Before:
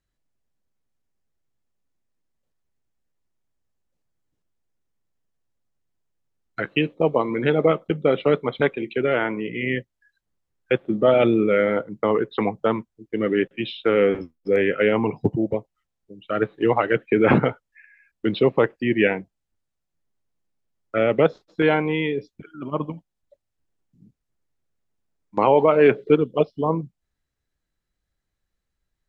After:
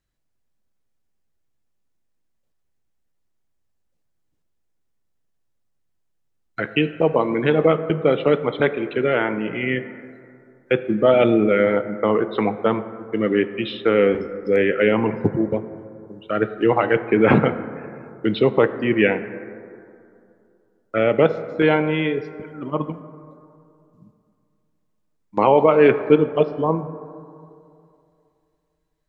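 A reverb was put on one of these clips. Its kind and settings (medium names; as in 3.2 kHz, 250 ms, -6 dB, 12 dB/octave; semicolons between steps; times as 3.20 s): plate-style reverb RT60 2.6 s, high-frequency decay 0.3×, DRR 11 dB; trim +1.5 dB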